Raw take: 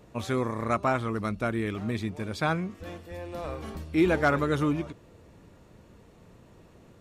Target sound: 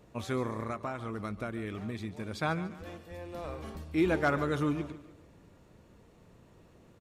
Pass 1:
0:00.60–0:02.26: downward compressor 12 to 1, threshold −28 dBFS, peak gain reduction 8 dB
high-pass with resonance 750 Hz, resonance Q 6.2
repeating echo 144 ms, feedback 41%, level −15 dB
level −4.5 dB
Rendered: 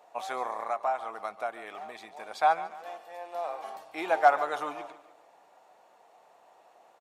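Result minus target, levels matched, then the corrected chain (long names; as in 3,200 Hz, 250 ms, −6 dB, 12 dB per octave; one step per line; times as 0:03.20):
1,000 Hz band +7.0 dB
0:00.60–0:02.26: downward compressor 12 to 1, threshold −28 dBFS, peak gain reduction 8 dB
repeating echo 144 ms, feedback 41%, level −15 dB
level −4.5 dB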